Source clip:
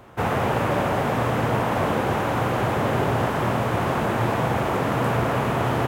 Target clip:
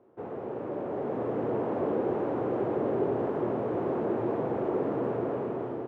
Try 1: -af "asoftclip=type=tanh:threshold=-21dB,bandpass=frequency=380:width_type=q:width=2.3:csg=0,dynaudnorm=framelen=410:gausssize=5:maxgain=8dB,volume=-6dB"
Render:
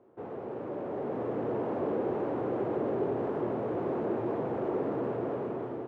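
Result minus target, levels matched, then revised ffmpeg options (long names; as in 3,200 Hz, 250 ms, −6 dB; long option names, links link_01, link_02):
soft clipping: distortion +8 dB
-af "asoftclip=type=tanh:threshold=-14.5dB,bandpass=frequency=380:width_type=q:width=2.3:csg=0,dynaudnorm=framelen=410:gausssize=5:maxgain=8dB,volume=-6dB"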